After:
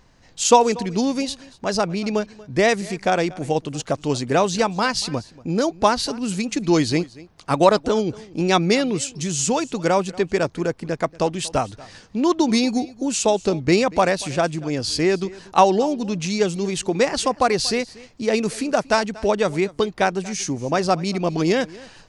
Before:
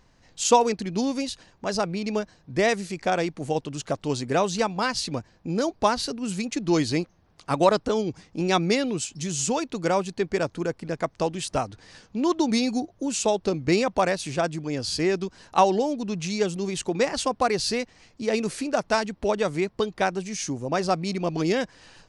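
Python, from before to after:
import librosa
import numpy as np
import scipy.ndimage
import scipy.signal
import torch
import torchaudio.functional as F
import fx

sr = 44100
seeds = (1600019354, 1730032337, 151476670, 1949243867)

y = x + 10.0 ** (-21.0 / 20.0) * np.pad(x, (int(236 * sr / 1000.0), 0))[:len(x)]
y = y * 10.0 ** (4.5 / 20.0)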